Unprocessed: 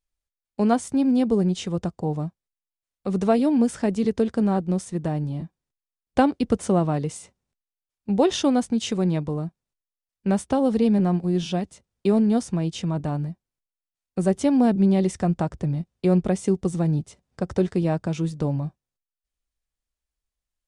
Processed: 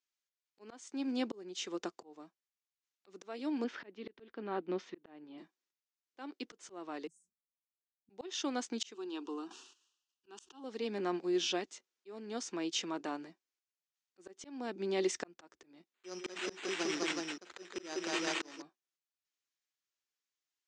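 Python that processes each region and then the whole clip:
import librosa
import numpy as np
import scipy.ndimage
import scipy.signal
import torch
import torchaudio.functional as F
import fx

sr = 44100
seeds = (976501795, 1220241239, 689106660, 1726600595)

y = fx.chain(x, sr, fx.lowpass(hz=3600.0, slope=24),
    fx.low_shelf(hz=120.0, db=9.5), at=(3.64, 5.38))
y = fx.chain(y, sr, fx.cheby2_bandstop(low_hz=680.0, high_hz=3100.0, order=4, stop_db=80),
    fx.high_shelf(hz=8300.0, db=-7.0),
    fx.comb(ms=5.3, depth=0.87), at=(7.07, 8.1))
y = fx.chain(y, sr, fx.peak_eq(hz=2800.0, db=14.5, octaves=0.49),
    fx.fixed_phaser(hz=580.0, stages=6),
    fx.sustainer(db_per_s=73.0), at=(8.94, 10.64))
y = fx.chain(y, sr, fx.peak_eq(hz=5500.0, db=13.0, octaves=2.7),
    fx.echo_multitap(ms=(45, 152, 204, 373), db=(-16.5, -15.5, -4.5, -6.5)),
    fx.resample_bad(factor=8, down='none', up='hold'), at=(15.94, 18.62))
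y = scipy.signal.sosfilt(scipy.signal.ellip(3, 1.0, 40, [340.0, 6700.0], 'bandpass', fs=sr, output='sos'), y)
y = fx.peak_eq(y, sr, hz=590.0, db=-11.5, octaves=1.6)
y = fx.auto_swell(y, sr, attack_ms=577.0)
y = F.gain(torch.from_numpy(y), 1.5).numpy()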